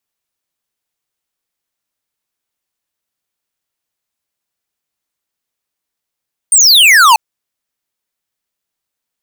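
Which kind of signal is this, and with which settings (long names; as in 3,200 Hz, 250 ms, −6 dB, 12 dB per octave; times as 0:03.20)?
single falling chirp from 9,100 Hz, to 840 Hz, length 0.64 s square, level −5.5 dB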